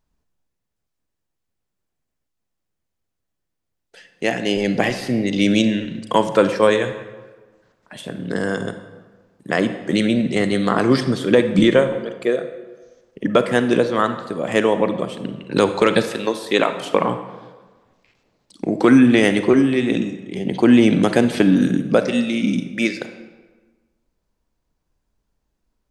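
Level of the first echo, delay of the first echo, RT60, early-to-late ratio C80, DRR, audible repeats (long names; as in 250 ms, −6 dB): no echo audible, no echo audible, 1.3 s, 11.5 dB, 9.0 dB, no echo audible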